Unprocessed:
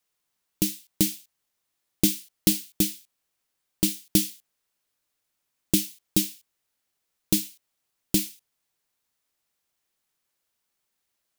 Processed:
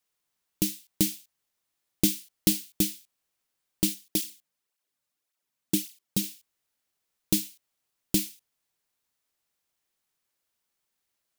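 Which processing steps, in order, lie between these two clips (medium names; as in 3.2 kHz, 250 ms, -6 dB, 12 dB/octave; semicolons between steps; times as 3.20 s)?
3.94–6.24 s: cancelling through-zero flanger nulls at 1.8 Hz, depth 3.1 ms; trim -2 dB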